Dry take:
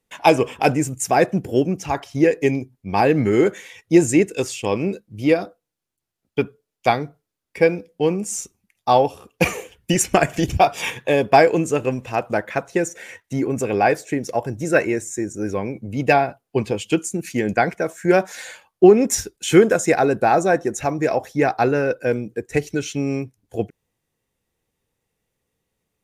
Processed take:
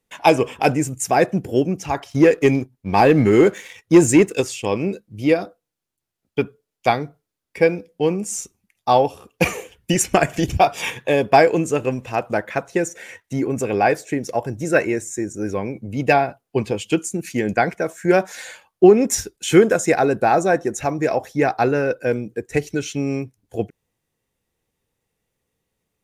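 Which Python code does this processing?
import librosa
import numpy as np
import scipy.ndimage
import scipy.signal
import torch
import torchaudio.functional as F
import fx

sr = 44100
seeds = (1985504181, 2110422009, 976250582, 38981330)

y = fx.leveller(x, sr, passes=1, at=(2.1, 4.41))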